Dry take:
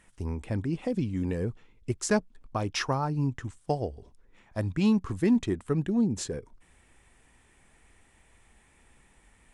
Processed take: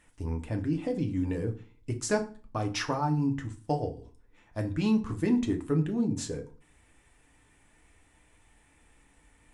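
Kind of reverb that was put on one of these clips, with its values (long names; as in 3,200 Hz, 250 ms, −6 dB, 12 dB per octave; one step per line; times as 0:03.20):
feedback delay network reverb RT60 0.38 s, low-frequency decay 1.3×, high-frequency decay 0.8×, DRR 3.5 dB
level −3 dB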